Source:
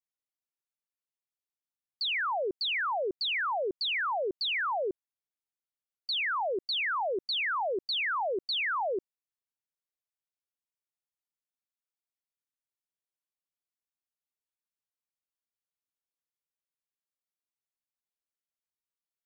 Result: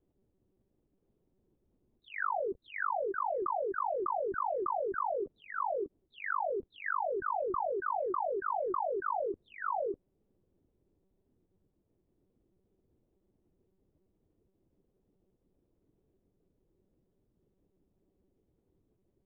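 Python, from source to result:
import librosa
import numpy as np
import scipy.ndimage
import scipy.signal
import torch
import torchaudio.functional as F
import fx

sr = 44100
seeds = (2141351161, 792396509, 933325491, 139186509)

y = fx.spec_gate(x, sr, threshold_db=-15, keep='strong')
y = fx.ladder_lowpass(y, sr, hz=430.0, resonance_pct=30)
y = y + 10.0 ** (-7.0 / 20.0) * np.pad(y, (int(929 * sr / 1000.0), 0))[:len(y)]
y = fx.lpc_monotone(y, sr, seeds[0], pitch_hz=190.0, order=10)
y = fx.env_flatten(y, sr, amount_pct=100)
y = y * 10.0 ** (3.5 / 20.0)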